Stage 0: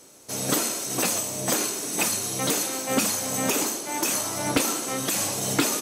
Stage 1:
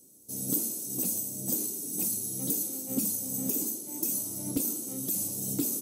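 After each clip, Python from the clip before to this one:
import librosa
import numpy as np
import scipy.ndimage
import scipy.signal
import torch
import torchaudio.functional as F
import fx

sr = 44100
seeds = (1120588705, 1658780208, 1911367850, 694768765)

y = fx.curve_eq(x, sr, hz=(120.0, 190.0, 290.0, 820.0, 1700.0, 14000.0), db=(0, 4, 2, -16, -25, 10))
y = y * librosa.db_to_amplitude(-7.5)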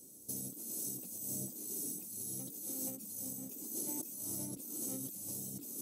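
y = fx.over_compress(x, sr, threshold_db=-39.0, ratio=-1.0)
y = y * librosa.db_to_amplitude(-4.5)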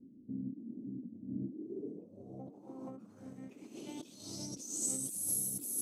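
y = fx.filter_sweep_lowpass(x, sr, from_hz=250.0, to_hz=11000.0, start_s=1.32, end_s=5.25, q=4.3)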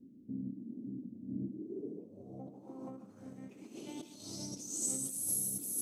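y = x + 10.0 ** (-12.5 / 20.0) * np.pad(x, (int(143 * sr / 1000.0), 0))[:len(x)]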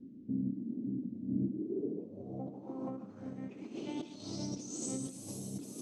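y = fx.air_absorb(x, sr, metres=140.0)
y = y * librosa.db_to_amplitude(6.0)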